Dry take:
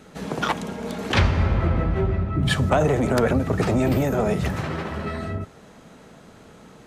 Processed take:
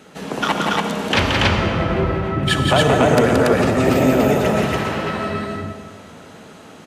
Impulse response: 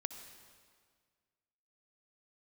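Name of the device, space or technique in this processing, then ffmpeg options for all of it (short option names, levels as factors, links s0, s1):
stadium PA: -filter_complex "[0:a]highpass=f=210:p=1,equalizer=f=2900:t=o:w=0.33:g=4,aecho=1:1:174.9|282.8:0.631|0.891[s0];[1:a]atrim=start_sample=2205[s1];[s0][s1]afir=irnorm=-1:irlink=0,volume=1.88"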